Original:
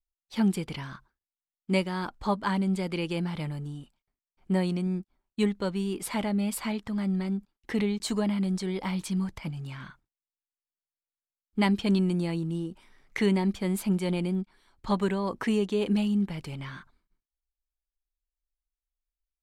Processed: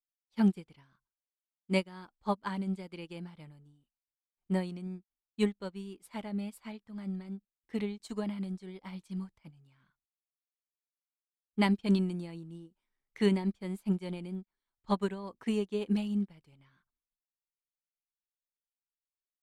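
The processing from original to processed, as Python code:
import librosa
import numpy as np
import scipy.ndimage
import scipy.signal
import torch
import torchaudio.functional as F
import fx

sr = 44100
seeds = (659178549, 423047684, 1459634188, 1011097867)

y = fx.upward_expand(x, sr, threshold_db=-39.0, expansion=2.5)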